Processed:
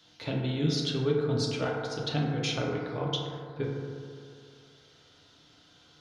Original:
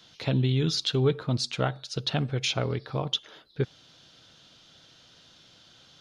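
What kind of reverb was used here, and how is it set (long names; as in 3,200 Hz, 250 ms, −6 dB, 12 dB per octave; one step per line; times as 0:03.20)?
feedback delay network reverb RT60 2.4 s, low-frequency decay 0.85×, high-frequency decay 0.25×, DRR −3 dB
level −6.5 dB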